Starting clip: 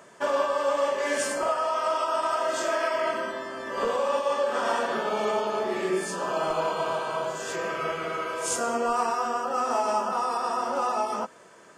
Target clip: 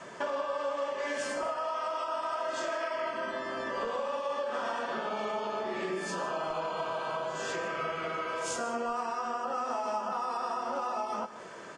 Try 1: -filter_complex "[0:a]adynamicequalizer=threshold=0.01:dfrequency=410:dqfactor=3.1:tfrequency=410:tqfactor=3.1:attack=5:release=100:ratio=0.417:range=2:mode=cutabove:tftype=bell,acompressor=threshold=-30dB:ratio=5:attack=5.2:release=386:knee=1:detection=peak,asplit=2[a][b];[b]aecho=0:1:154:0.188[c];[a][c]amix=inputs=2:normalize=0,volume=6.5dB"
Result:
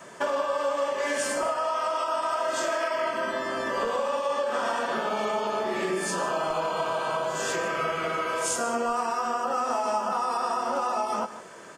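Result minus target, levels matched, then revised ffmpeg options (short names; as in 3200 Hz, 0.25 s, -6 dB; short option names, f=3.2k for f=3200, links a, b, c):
compressor: peak gain reduction -6 dB; 8000 Hz band +4.0 dB
-filter_complex "[0:a]adynamicequalizer=threshold=0.01:dfrequency=410:dqfactor=3.1:tfrequency=410:tqfactor=3.1:attack=5:release=100:ratio=0.417:range=2:mode=cutabove:tftype=bell,lowpass=5.9k,acompressor=threshold=-37.5dB:ratio=5:attack=5.2:release=386:knee=1:detection=peak,asplit=2[a][b];[b]aecho=0:1:154:0.188[c];[a][c]amix=inputs=2:normalize=0,volume=6.5dB"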